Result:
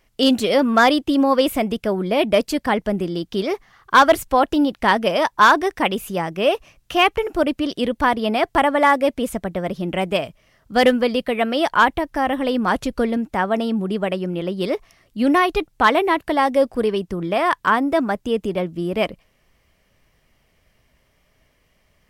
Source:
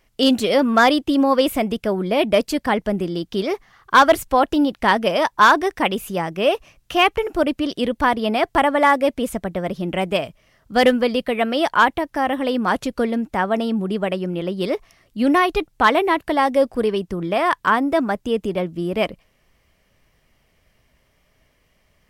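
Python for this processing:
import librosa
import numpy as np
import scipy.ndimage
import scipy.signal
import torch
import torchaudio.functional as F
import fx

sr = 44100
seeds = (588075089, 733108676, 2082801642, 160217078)

y = fx.low_shelf(x, sr, hz=64.0, db=11.5, at=(11.72, 13.17))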